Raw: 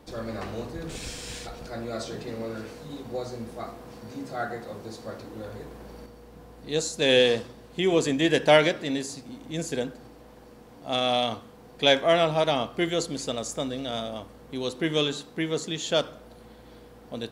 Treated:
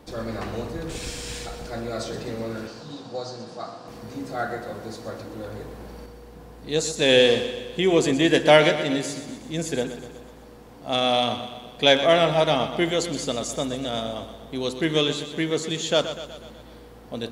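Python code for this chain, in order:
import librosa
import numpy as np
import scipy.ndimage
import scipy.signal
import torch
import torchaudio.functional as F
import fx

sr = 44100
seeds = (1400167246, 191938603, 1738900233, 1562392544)

p1 = fx.cabinet(x, sr, low_hz=130.0, low_slope=24, high_hz=7700.0, hz=(230.0, 400.0, 2100.0, 4800.0), db=(-7, -9, -9, 8), at=(2.67, 3.88))
p2 = p1 + fx.echo_feedback(p1, sr, ms=123, feedback_pct=57, wet_db=-11, dry=0)
y = p2 * 10.0 ** (3.0 / 20.0)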